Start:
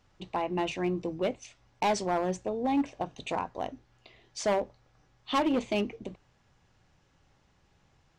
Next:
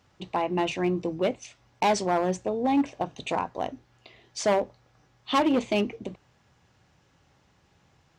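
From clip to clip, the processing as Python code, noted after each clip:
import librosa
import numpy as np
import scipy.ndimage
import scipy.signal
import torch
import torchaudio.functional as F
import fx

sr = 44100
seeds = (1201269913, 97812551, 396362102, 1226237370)

y = scipy.signal.sosfilt(scipy.signal.butter(2, 66.0, 'highpass', fs=sr, output='sos'), x)
y = F.gain(torch.from_numpy(y), 4.0).numpy()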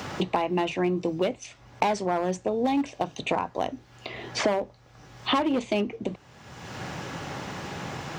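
y = fx.band_squash(x, sr, depth_pct=100)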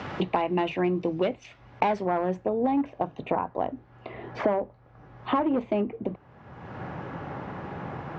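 y = fx.filter_sweep_lowpass(x, sr, from_hz=2800.0, to_hz=1400.0, start_s=1.64, end_s=2.76, q=0.77)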